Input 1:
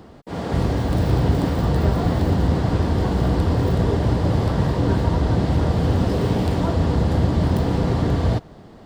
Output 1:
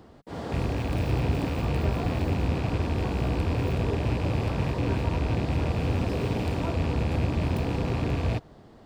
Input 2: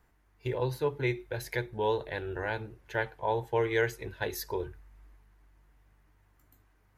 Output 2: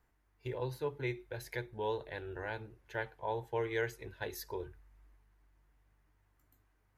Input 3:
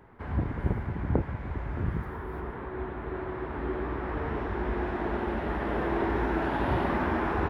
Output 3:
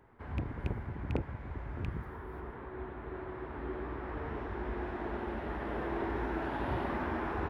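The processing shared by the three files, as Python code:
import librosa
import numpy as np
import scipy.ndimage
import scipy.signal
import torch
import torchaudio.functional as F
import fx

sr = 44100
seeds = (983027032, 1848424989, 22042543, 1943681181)

y = fx.rattle_buzz(x, sr, strikes_db=-21.0, level_db=-22.0)
y = fx.peak_eq(y, sr, hz=180.0, db=-5.0, octaves=0.21)
y = y * 10.0 ** (-7.0 / 20.0)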